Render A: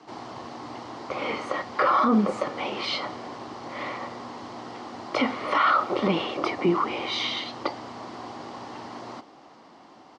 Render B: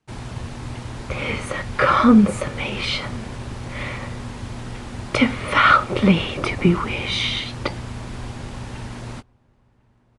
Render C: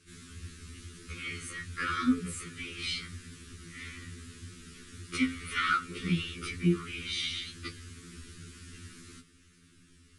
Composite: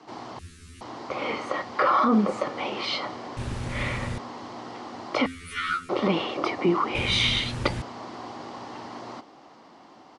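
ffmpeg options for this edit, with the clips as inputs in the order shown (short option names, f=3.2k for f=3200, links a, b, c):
-filter_complex "[2:a]asplit=2[a][b];[1:a]asplit=2[c][d];[0:a]asplit=5[e][f][g][h][i];[e]atrim=end=0.392[j];[a]atrim=start=0.388:end=0.812[k];[f]atrim=start=0.808:end=3.372[l];[c]atrim=start=3.368:end=4.182[m];[g]atrim=start=4.178:end=5.262[n];[b]atrim=start=5.258:end=5.892[o];[h]atrim=start=5.888:end=6.952[p];[d]atrim=start=6.948:end=7.822[q];[i]atrim=start=7.818[r];[j][k]acrossfade=d=0.004:c1=hsin:c2=hsin[s];[s][l]acrossfade=d=0.004:c1=hsin:c2=hsin[t];[t][m]acrossfade=d=0.004:c1=hsin:c2=hsin[u];[u][n]acrossfade=d=0.004:c1=hsin:c2=hsin[v];[v][o]acrossfade=d=0.004:c1=hsin:c2=hsin[w];[w][p]acrossfade=d=0.004:c1=hsin:c2=hsin[x];[x][q]acrossfade=d=0.004:c1=hsin:c2=hsin[y];[y][r]acrossfade=d=0.004:c1=hsin:c2=hsin"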